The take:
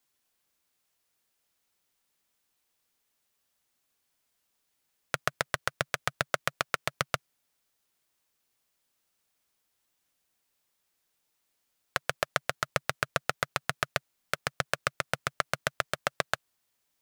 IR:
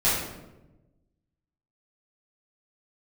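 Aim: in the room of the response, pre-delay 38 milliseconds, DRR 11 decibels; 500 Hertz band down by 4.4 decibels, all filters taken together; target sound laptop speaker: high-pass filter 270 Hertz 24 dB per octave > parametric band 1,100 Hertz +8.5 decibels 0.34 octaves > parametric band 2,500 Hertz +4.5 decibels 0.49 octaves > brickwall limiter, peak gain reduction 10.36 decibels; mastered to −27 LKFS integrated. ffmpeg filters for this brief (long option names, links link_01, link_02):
-filter_complex "[0:a]equalizer=frequency=500:width_type=o:gain=-6,asplit=2[link_01][link_02];[1:a]atrim=start_sample=2205,adelay=38[link_03];[link_02][link_03]afir=irnorm=-1:irlink=0,volume=-25.5dB[link_04];[link_01][link_04]amix=inputs=2:normalize=0,highpass=frequency=270:width=0.5412,highpass=frequency=270:width=1.3066,equalizer=frequency=1100:width_type=o:width=0.34:gain=8.5,equalizer=frequency=2500:width_type=o:width=0.49:gain=4.5,volume=11.5dB,alimiter=limit=-3dB:level=0:latency=1"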